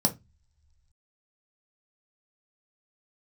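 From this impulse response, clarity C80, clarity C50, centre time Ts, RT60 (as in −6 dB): 26.0 dB, 17.0 dB, 8 ms, non-exponential decay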